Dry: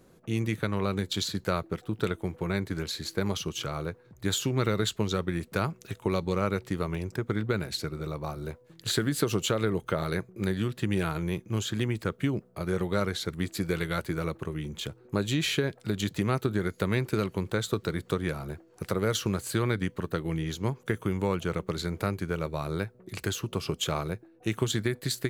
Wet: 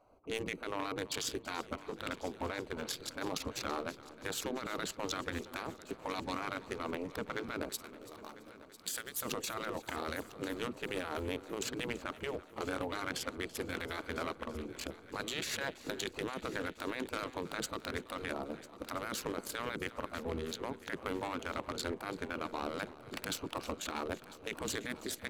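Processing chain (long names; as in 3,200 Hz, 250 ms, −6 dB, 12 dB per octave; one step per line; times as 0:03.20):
adaptive Wiener filter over 25 samples
gate on every frequency bin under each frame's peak −10 dB weak
0:07.69–0:09.22: first-order pre-emphasis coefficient 0.8
compressor whose output falls as the input rises −40 dBFS, ratio −1
hard clipping −27.5 dBFS, distortion −26 dB
on a send: echo machine with several playback heads 333 ms, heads first and third, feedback 53%, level −18 dB
on the sum: level +2.5 dB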